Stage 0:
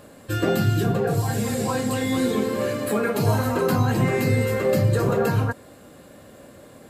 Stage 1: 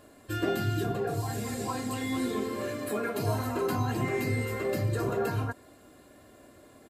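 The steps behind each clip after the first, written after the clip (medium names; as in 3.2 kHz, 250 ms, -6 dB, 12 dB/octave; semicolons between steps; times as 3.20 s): comb 2.9 ms, depth 49%; trim -8.5 dB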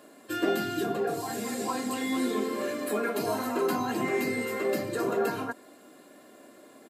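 high-pass 190 Hz 24 dB/octave; trim +2.5 dB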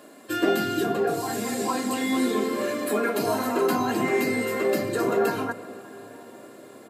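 reverberation RT60 5.2 s, pre-delay 118 ms, DRR 15 dB; trim +4.5 dB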